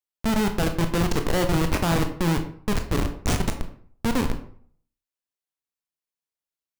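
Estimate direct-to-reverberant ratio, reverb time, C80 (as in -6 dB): 5.5 dB, 0.55 s, 13.5 dB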